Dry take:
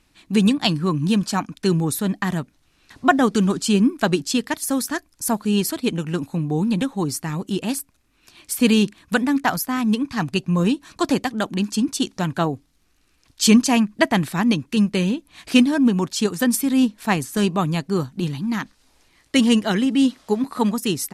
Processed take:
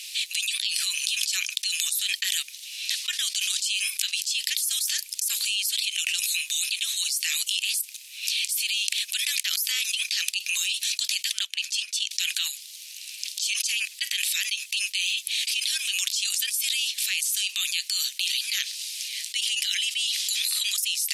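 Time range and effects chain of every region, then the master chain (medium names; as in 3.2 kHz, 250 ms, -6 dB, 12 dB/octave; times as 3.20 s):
11.39–12.11 s: tilt EQ -3.5 dB/octave + upward expansion, over -25 dBFS
whole clip: steep high-pass 2.6 kHz 36 dB/octave; level flattener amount 100%; trim -10 dB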